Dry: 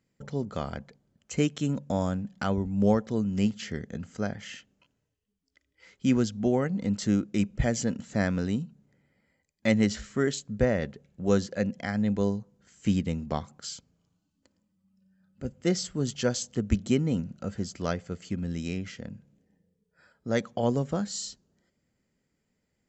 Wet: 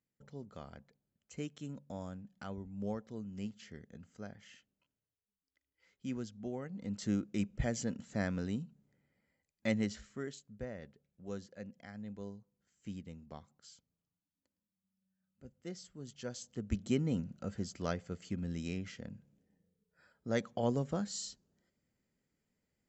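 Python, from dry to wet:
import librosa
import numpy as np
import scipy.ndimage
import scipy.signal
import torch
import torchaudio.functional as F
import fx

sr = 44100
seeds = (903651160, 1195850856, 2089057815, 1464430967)

y = fx.gain(x, sr, db=fx.line((6.66, -16.0), (7.09, -8.5), (9.66, -8.5), (10.51, -19.0), (16.03, -19.0), (17.01, -6.5)))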